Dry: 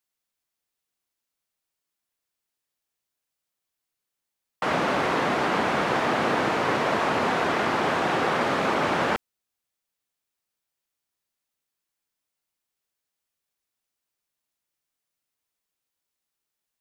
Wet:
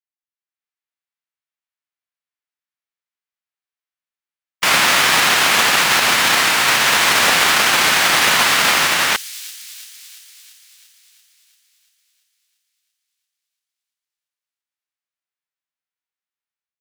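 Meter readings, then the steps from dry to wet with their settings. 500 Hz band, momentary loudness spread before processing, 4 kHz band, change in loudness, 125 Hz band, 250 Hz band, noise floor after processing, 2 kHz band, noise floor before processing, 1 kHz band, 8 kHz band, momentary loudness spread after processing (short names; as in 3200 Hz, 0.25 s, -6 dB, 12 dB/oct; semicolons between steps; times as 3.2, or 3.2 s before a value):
-0.5 dB, 2 LU, +19.5 dB, +11.5 dB, +0.5 dB, -2.0 dB, under -85 dBFS, +13.5 dB, -85 dBFS, +6.0 dB, +25.5 dB, 6 LU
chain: spectral whitening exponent 0.1; gate with hold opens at -15 dBFS; AGC gain up to 8 dB; bell 1800 Hz +14.5 dB 3 oct; on a send: thin delay 0.341 s, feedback 62%, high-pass 4800 Hz, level -12 dB; on the sum: Doppler distortion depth 0.53 ms; gain -5 dB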